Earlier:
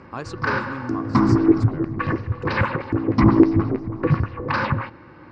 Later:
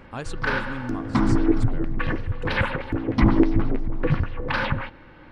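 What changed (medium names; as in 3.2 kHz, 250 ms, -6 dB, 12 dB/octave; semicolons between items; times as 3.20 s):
background: add bass shelf 170 Hz -8 dB; master: remove cabinet simulation 110–6900 Hz, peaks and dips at 110 Hz +3 dB, 360 Hz +6 dB, 1.1 kHz +8 dB, 3.3 kHz -9 dB, 5 kHz +6 dB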